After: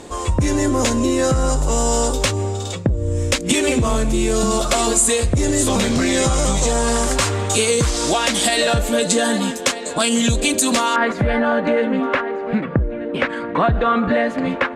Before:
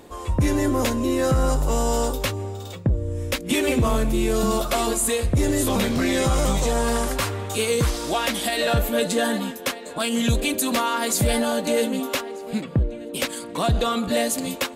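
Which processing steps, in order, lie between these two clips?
compression, threshold -23 dBFS, peak gain reduction 7.5 dB; resonant low-pass 7.7 kHz, resonance Q 2.1, from 10.96 s 1.7 kHz; trim +8.5 dB

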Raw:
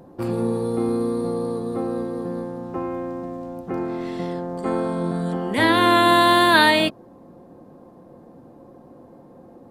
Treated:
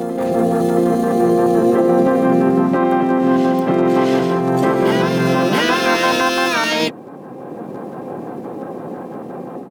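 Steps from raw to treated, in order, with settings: high-pass 170 Hz 24 dB/octave; level rider gain up to 14 dB; peak limiter -11.5 dBFS, peak gain reduction 10.5 dB; LFO notch square 5.8 Hz 980–5700 Hz; harmony voices -5 st -4 dB, +7 st -2 dB; reverse echo 675 ms -6.5 dB; trim +1 dB

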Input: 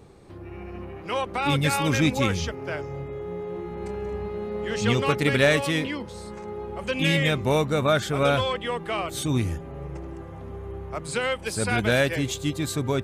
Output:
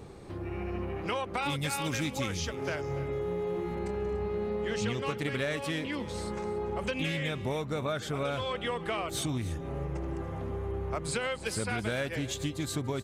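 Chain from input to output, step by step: 1.37–3.79 s: treble shelf 4.3 kHz +8 dB; compression 6:1, threshold -33 dBFS, peak gain reduction 17 dB; delay 290 ms -16.5 dB; loudspeaker Doppler distortion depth 0.11 ms; trim +3 dB

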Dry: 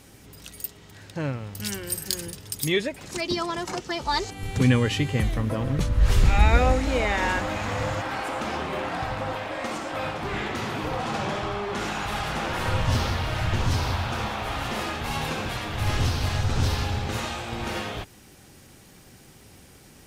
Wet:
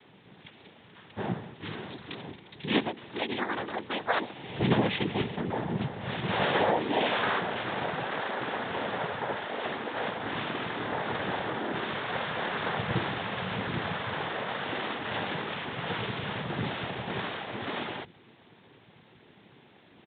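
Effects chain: high-pass 140 Hz; hum notches 50/100/150/200/250/300/350 Hz; noise-vocoded speech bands 6; resampled via 8 kHz; trim -2 dB

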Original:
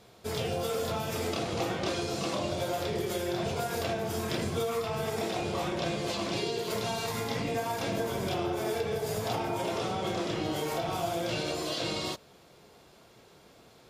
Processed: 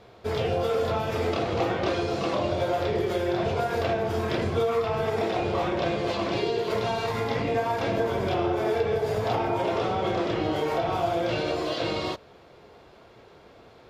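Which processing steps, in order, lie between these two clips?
FFT filter 100 Hz 0 dB, 160 Hz -6 dB, 440 Hz 0 dB, 1.9 kHz -2 dB, 4.4 kHz -8 dB, 8.5 kHz -18 dB; trim +7 dB

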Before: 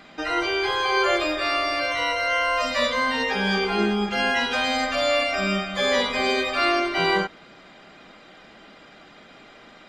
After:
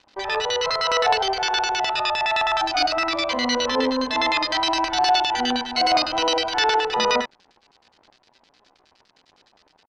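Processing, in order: crossover distortion -45 dBFS; LFO low-pass square 9.7 Hz 710–3700 Hz; pitch shift +4 st

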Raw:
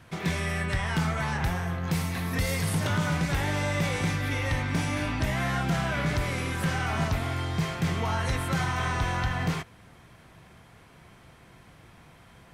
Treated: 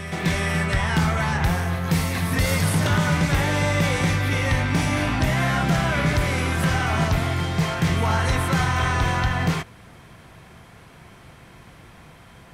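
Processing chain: reverse echo 419 ms -9.5 dB; trim +6 dB

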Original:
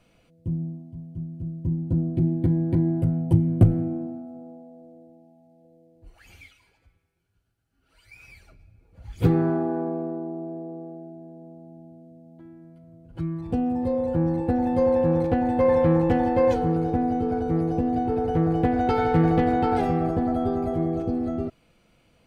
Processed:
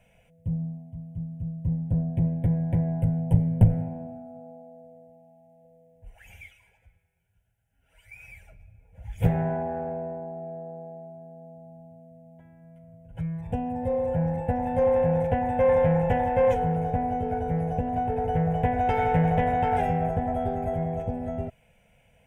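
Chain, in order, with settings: single-diode clipper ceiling -16.5 dBFS; static phaser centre 1.2 kHz, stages 6; trim +3 dB

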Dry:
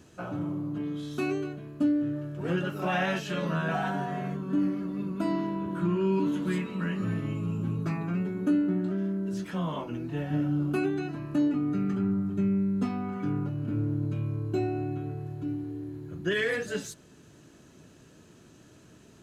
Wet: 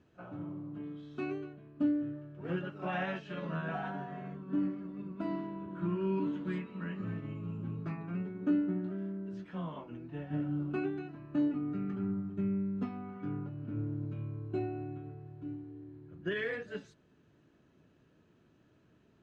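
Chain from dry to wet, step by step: low-pass 3 kHz 12 dB/octave; on a send: reverse echo 38 ms -24 dB; on the sum: upward expansion 1.5:1, over -36 dBFS; trim -4 dB

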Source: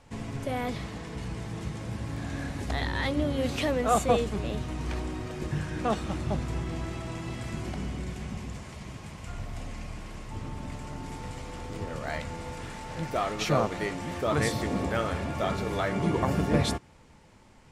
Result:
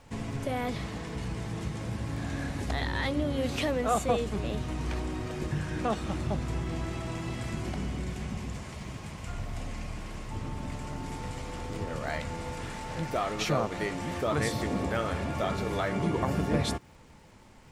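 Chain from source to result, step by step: compression 1.5:1, threshold -32 dBFS, peak gain reduction 5.5 dB; crackle 280 per s -59 dBFS; trim +1.5 dB

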